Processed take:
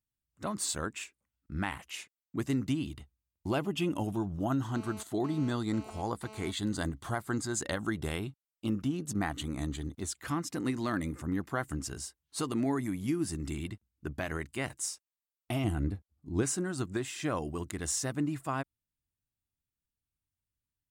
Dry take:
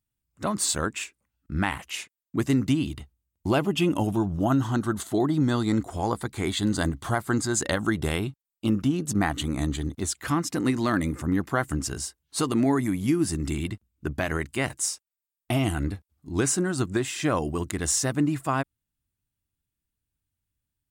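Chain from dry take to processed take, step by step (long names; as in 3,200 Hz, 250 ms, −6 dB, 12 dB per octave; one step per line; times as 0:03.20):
0:04.75–0:06.51: phone interference −41 dBFS
0:15.64–0:16.43: tilt shelving filter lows +5 dB, about 850 Hz
level −8 dB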